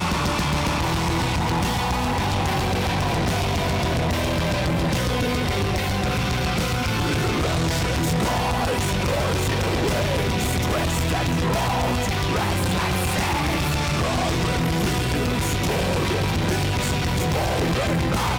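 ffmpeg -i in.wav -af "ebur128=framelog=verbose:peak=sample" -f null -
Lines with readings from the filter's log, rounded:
Integrated loudness:
  I:         -22.4 LUFS
  Threshold: -32.4 LUFS
Loudness range:
  LRA:         0.4 LU
  Threshold: -42.4 LUFS
  LRA low:   -22.7 LUFS
  LRA high:  -22.3 LUFS
Sample peak:
  Peak:      -16.8 dBFS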